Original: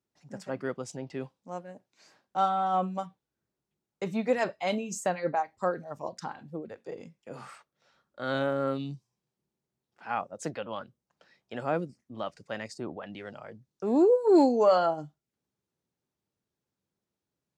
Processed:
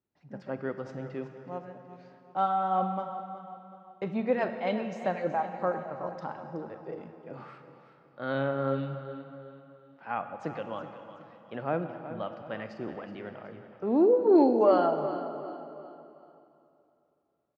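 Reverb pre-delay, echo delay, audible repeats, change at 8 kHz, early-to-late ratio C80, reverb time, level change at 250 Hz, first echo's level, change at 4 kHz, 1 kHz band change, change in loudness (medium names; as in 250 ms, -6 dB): 28 ms, 372 ms, 3, under -20 dB, 7.5 dB, 2.9 s, +0.5 dB, -13.0 dB, -6.0 dB, 0.0 dB, -0.5 dB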